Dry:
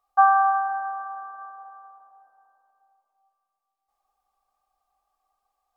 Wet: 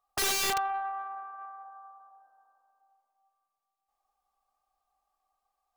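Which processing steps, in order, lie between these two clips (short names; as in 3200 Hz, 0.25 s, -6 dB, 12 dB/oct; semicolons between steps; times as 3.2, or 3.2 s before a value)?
0.5–1.64 tube stage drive 20 dB, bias 0.25; thinning echo 0.105 s, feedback 28%, high-pass 730 Hz, level -12 dB; wrapped overs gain 19.5 dB; gain -4 dB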